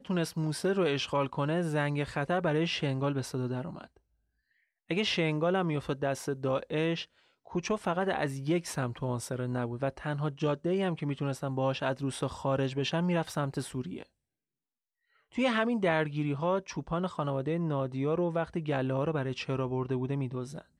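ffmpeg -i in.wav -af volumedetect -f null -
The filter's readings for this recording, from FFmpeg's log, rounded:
mean_volume: -31.6 dB
max_volume: -14.8 dB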